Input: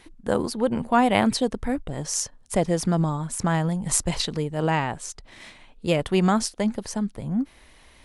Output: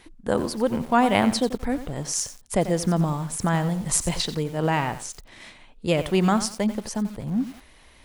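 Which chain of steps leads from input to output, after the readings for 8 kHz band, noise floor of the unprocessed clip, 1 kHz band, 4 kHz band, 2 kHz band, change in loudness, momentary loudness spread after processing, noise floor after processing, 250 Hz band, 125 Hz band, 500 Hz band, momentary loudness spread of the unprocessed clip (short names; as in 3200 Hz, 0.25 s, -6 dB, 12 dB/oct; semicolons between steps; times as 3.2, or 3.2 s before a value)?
0.0 dB, -53 dBFS, 0.0 dB, 0.0 dB, 0.0 dB, 0.0 dB, 8 LU, -52 dBFS, 0.0 dB, 0.0 dB, 0.0 dB, 8 LU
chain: lo-fi delay 90 ms, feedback 35%, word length 6-bit, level -12 dB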